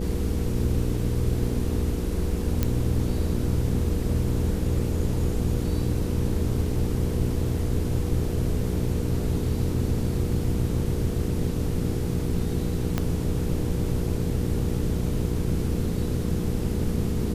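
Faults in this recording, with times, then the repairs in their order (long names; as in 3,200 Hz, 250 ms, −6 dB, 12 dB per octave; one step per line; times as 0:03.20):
mains hum 60 Hz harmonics 8 −29 dBFS
0:02.63: click −9 dBFS
0:12.98: click −11 dBFS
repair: click removal
hum removal 60 Hz, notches 8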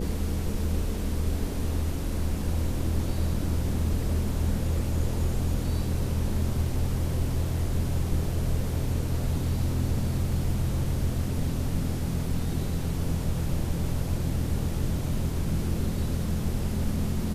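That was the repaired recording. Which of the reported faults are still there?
0:12.98: click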